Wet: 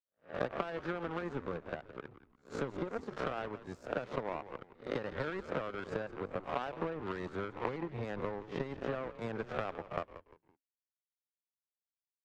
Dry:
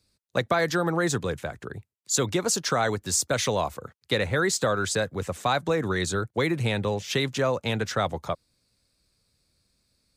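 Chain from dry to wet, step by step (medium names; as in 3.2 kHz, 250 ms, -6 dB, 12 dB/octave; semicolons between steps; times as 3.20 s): reverse spectral sustain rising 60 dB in 0.41 s; low-pass 1.2 kHz 12 dB/octave; bass shelf 110 Hz -11 dB; compression 12:1, threshold -28 dBFS, peak gain reduction 10.5 dB; power-law waveshaper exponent 2; on a send: frequency-shifting echo 144 ms, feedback 32%, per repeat -93 Hz, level -14 dB; on the sum: tempo 0.83×; trim +2.5 dB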